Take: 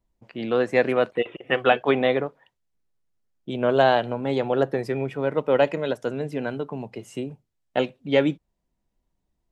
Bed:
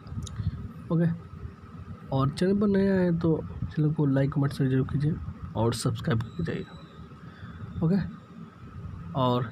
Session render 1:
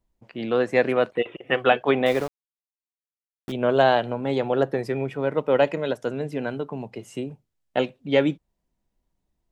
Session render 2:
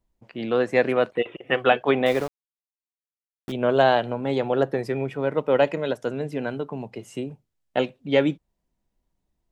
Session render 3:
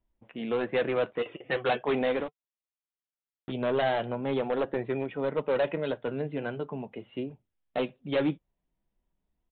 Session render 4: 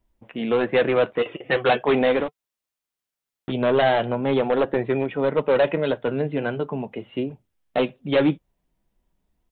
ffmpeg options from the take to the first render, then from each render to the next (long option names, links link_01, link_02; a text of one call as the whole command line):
ffmpeg -i in.wav -filter_complex "[0:a]asettb=1/sr,asplit=3[link_01][link_02][link_03];[link_01]atrim=end=2.064[link_04];[link_02]atrim=start=2.06:end=3.52,asetpts=PTS-STARTPTS,afade=type=in:duration=0.004:curve=qsin,afade=type=out:start_time=1.456:duration=0.004:curve=qsin,aeval=exprs='val(0)*gte(abs(val(0)),0.0237)':channel_layout=same[link_05];[link_03]atrim=start=3.516[link_06];[link_04][link_05]acrossfade=duration=0.004:curve1=hsin:curve2=qsin[link_07];[link_07][link_06]acrossfade=duration=0.004:curve1=qsin:curve2=hsin" out.wav
ffmpeg -i in.wav -af anull out.wav
ffmpeg -i in.wav -af "aresample=8000,asoftclip=type=hard:threshold=-18dB,aresample=44100,flanger=delay=2.9:depth=4.2:regen=-60:speed=0.41:shape=triangular" out.wav
ffmpeg -i in.wav -af "volume=8dB" out.wav